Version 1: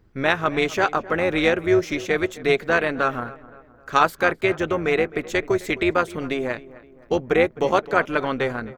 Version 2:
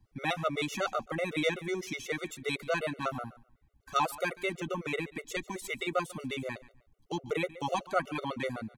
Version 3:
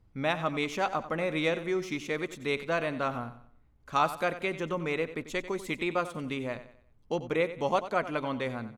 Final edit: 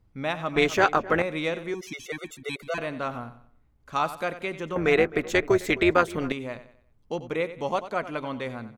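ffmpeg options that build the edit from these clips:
-filter_complex "[0:a]asplit=2[a][b];[2:a]asplit=4[c][d][e][f];[c]atrim=end=0.562[g];[a]atrim=start=0.558:end=1.222[h];[d]atrim=start=1.218:end=1.742[i];[1:a]atrim=start=1.738:end=2.782[j];[e]atrim=start=2.778:end=4.762[k];[b]atrim=start=4.758:end=6.322[l];[f]atrim=start=6.318[m];[g][h]acrossfade=d=0.004:c1=hsin:c2=hsin[n];[n][i]acrossfade=d=0.004:c1=hsin:c2=hsin[o];[o][j]acrossfade=d=0.004:c1=hsin:c2=hsin[p];[p][k]acrossfade=d=0.004:c1=hsin:c2=hsin[q];[q][l]acrossfade=d=0.004:c1=hsin:c2=hsin[r];[r][m]acrossfade=d=0.004:c1=hsin:c2=hsin"

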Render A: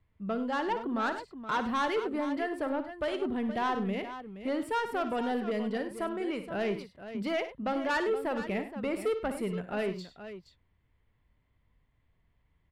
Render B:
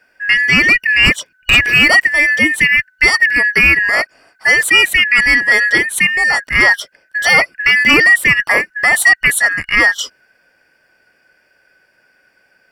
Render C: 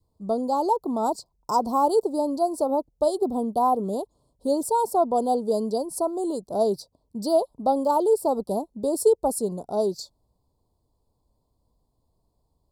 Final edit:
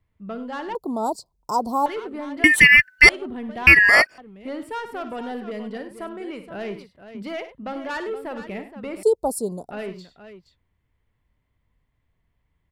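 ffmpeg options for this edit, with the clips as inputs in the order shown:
-filter_complex "[2:a]asplit=2[a][b];[1:a]asplit=2[c][d];[0:a]asplit=5[e][f][g][h][i];[e]atrim=end=0.752[j];[a]atrim=start=0.748:end=1.862[k];[f]atrim=start=1.858:end=2.442[l];[c]atrim=start=2.438:end=3.092[m];[g]atrim=start=3.088:end=3.672[n];[d]atrim=start=3.668:end=4.182[o];[h]atrim=start=4.178:end=9.032[p];[b]atrim=start=9.028:end=9.712[q];[i]atrim=start=9.708[r];[j][k]acrossfade=d=0.004:c1=hsin:c2=hsin[s];[s][l]acrossfade=d=0.004:c1=hsin:c2=hsin[t];[t][m]acrossfade=d=0.004:c1=hsin:c2=hsin[u];[u][n]acrossfade=d=0.004:c1=hsin:c2=hsin[v];[v][o]acrossfade=d=0.004:c1=hsin:c2=hsin[w];[w][p]acrossfade=d=0.004:c1=hsin:c2=hsin[x];[x][q]acrossfade=d=0.004:c1=hsin:c2=hsin[y];[y][r]acrossfade=d=0.004:c1=hsin:c2=hsin"

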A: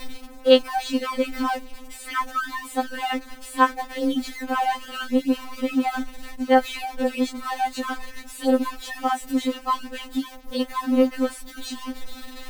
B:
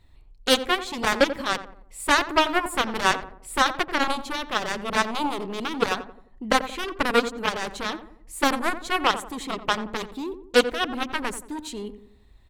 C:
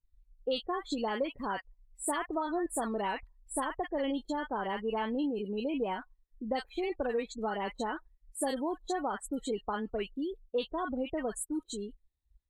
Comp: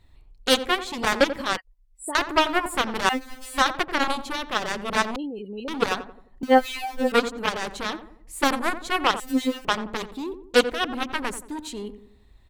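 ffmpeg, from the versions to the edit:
-filter_complex "[2:a]asplit=2[a][b];[0:a]asplit=3[c][d][e];[1:a]asplit=6[f][g][h][i][j][k];[f]atrim=end=1.572[l];[a]atrim=start=1.568:end=2.152[m];[g]atrim=start=2.148:end=3.092[n];[c]atrim=start=3.088:end=3.582[o];[h]atrim=start=3.578:end=5.162[p];[b]atrim=start=5.158:end=5.682[q];[i]atrim=start=5.678:end=6.432[r];[d]atrim=start=6.428:end=7.122[s];[j]atrim=start=7.118:end=9.202[t];[e]atrim=start=9.198:end=9.652[u];[k]atrim=start=9.648[v];[l][m]acrossfade=d=0.004:c1=hsin:c2=hsin[w];[w][n]acrossfade=d=0.004:c1=hsin:c2=hsin[x];[x][o]acrossfade=d=0.004:c1=hsin:c2=hsin[y];[y][p]acrossfade=d=0.004:c1=hsin:c2=hsin[z];[z][q]acrossfade=d=0.004:c1=hsin:c2=hsin[aa];[aa][r]acrossfade=d=0.004:c1=hsin:c2=hsin[ab];[ab][s]acrossfade=d=0.004:c1=hsin:c2=hsin[ac];[ac][t]acrossfade=d=0.004:c1=hsin:c2=hsin[ad];[ad][u]acrossfade=d=0.004:c1=hsin:c2=hsin[ae];[ae][v]acrossfade=d=0.004:c1=hsin:c2=hsin"

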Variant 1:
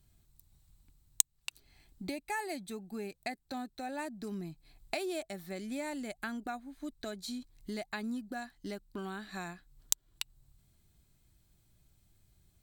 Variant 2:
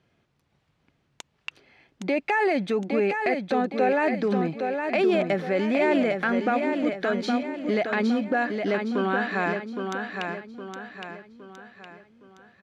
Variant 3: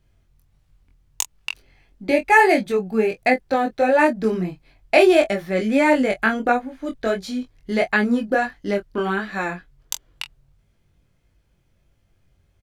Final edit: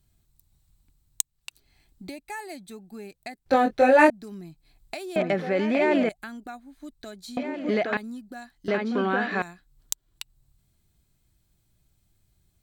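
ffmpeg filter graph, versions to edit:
-filter_complex "[1:a]asplit=3[a][b][c];[0:a]asplit=5[d][e][f][g][h];[d]atrim=end=3.462[i];[2:a]atrim=start=3.458:end=4.102[j];[e]atrim=start=4.098:end=5.162[k];[a]atrim=start=5.158:end=6.092[l];[f]atrim=start=6.088:end=7.372[m];[b]atrim=start=7.368:end=7.972[n];[g]atrim=start=7.968:end=8.682[o];[c]atrim=start=8.678:end=9.422[p];[h]atrim=start=9.418[q];[i][j]acrossfade=d=0.004:c1=hsin:c2=hsin[r];[r][k]acrossfade=d=0.004:c1=hsin:c2=hsin[s];[s][l]acrossfade=d=0.004:c1=hsin:c2=hsin[t];[t][m]acrossfade=d=0.004:c1=hsin:c2=hsin[u];[u][n]acrossfade=d=0.004:c1=hsin:c2=hsin[v];[v][o]acrossfade=d=0.004:c1=hsin:c2=hsin[w];[w][p]acrossfade=d=0.004:c1=hsin:c2=hsin[x];[x][q]acrossfade=d=0.004:c1=hsin:c2=hsin"

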